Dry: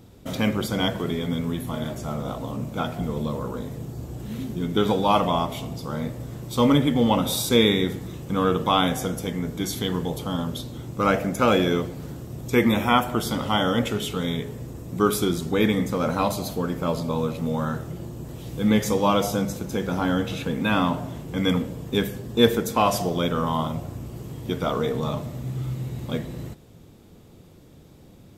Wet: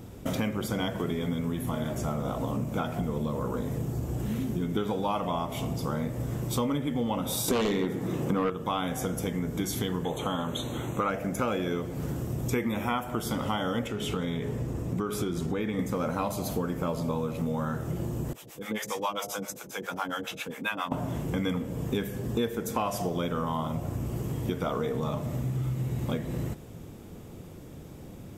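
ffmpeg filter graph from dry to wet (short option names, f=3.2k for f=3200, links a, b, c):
-filter_complex "[0:a]asettb=1/sr,asplit=3[a][b][c];[a]atrim=end=7.484[d];[b]atrim=start=7.48:end=8.5,asetpts=PTS-STARTPTS,afade=t=in:d=0.004:c=qsin,afade=t=out:st=1.016:d=0.004:c=qsin,highpass=170,highshelf=f=2.3k:g=-8,aeval=exprs='0.473*sin(PI/2*2.82*val(0)/0.473)':c=same[e];[c]atrim=start=8.496[f];[d][e]acrossfade=d=0.004:c1=hsin:c2=qsin[g];[g][f]acrossfade=d=0.004:c1=qsin:c2=hsin,asettb=1/sr,asplit=3[h][i][j];[h]atrim=end=10.044[k];[i]atrim=start=10.04:end=11.1,asetpts=PTS-STARTPTS,afade=t=in:d=0.004:c=qsin,afade=t=out:st=1.056:d=0.004:c=qsin,acrossover=split=8500[l][m];[m]acompressor=threshold=-52dB:ratio=4:attack=1:release=60[n];[l][n]amix=inputs=2:normalize=0,asplit=2[o][p];[p]highpass=f=720:p=1,volume=10dB,asoftclip=type=tanh:threshold=-7.5dB[q];[o][q]amix=inputs=2:normalize=0,lowpass=f=5.1k:p=1,volume=-6dB,asuperstop=centerf=5000:order=20:qfactor=3.1[r];[j]atrim=start=11.096[s];[k][r]acrossfade=d=0.004:c1=hsin:c2=qsin[t];[t][s]acrossfade=d=0.004:c1=qsin:c2=hsin,asettb=1/sr,asplit=3[u][v][w];[u]atrim=end=13.874[x];[v]atrim=start=13.87:end=15.79,asetpts=PTS-STARTPTS,afade=t=in:d=0.004:c=qsin,afade=t=out:st=1.916:d=0.004:c=qsin,acompressor=threshold=-26dB:ratio=3:attack=3.2:release=140:knee=1:detection=peak,highshelf=f=8.5k:g=-10.5[y];[w]atrim=start=15.786[z];[x][y]acrossfade=d=0.004:c1=hsin:c2=qsin[aa];[aa][z]acrossfade=d=0.004:c1=qsin:c2=hsin,asettb=1/sr,asplit=3[ab][ac][ad];[ab]atrim=end=18.334[ae];[ac]atrim=start=18.33:end=20.92,asetpts=PTS-STARTPTS,afade=t=in:d=0.004:c=qsin,afade=t=out:st=2.586:d=0.004:c=qsin,highpass=f=1.3k:p=1,acrossover=split=510[af][ag];[af]aeval=exprs='val(0)*(1-1/2+1/2*cos(2*PI*7.4*n/s))':c=same[ah];[ag]aeval=exprs='val(0)*(1-1/2-1/2*cos(2*PI*7.4*n/s))':c=same[ai];[ah][ai]amix=inputs=2:normalize=0[aj];[ad]atrim=start=20.916[ak];[ae][aj]acrossfade=d=0.004:c1=hsin:c2=qsin[al];[al][ak]acrossfade=d=0.004:c1=qsin:c2=hsin,equalizer=f=4.1k:t=o:w=0.63:g=-6.5,acompressor=threshold=-32dB:ratio=6,volume=5dB"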